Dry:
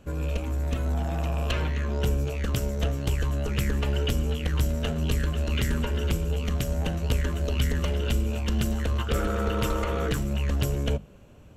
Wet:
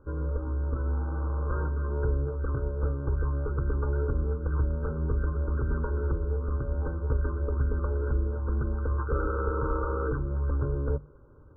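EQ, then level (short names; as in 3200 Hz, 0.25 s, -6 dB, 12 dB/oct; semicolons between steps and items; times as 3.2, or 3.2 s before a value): brick-wall FIR low-pass 1600 Hz; bell 150 Hz +11.5 dB 0.21 oct; fixed phaser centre 690 Hz, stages 6; 0.0 dB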